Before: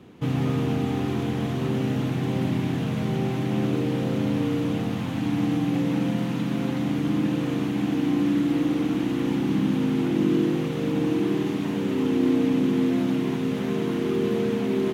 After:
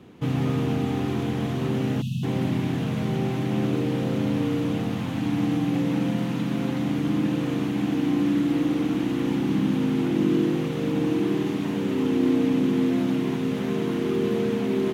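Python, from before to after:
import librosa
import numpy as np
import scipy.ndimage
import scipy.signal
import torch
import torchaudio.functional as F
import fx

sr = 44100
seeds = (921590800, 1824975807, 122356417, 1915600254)

y = fx.spec_erase(x, sr, start_s=2.02, length_s=0.21, low_hz=250.0, high_hz=2500.0)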